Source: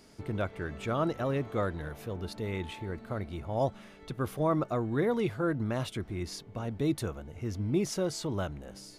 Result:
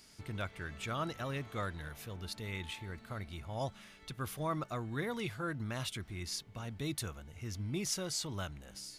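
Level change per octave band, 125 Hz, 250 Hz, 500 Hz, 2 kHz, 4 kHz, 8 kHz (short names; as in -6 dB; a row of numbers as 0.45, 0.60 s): -6.0, -9.5, -11.0, -1.5, +2.0, +3.0 dB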